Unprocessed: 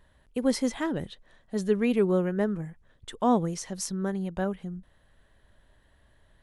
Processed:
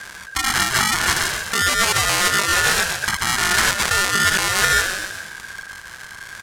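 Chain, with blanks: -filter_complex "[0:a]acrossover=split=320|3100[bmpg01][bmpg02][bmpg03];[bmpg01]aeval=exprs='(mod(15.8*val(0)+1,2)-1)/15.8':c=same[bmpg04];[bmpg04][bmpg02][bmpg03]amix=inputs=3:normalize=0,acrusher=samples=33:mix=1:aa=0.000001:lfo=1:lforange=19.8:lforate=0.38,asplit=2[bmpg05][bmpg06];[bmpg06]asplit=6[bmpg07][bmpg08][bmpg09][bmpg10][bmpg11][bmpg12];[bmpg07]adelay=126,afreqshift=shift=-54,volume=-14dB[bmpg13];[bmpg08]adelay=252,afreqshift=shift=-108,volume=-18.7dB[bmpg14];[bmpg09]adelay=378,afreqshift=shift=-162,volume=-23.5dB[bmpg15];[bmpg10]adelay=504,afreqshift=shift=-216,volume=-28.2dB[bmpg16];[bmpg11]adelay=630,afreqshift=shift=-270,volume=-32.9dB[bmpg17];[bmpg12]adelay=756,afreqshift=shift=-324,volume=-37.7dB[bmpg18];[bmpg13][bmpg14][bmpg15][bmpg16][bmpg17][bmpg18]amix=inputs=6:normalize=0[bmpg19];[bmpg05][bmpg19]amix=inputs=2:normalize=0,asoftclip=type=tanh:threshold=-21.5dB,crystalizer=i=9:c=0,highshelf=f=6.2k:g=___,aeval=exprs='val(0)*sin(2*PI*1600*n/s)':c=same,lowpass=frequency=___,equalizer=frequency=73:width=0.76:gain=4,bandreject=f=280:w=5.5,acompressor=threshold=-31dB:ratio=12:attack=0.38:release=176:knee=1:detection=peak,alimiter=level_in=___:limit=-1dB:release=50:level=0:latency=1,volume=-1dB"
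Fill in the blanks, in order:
-4, 9.2k, 26.5dB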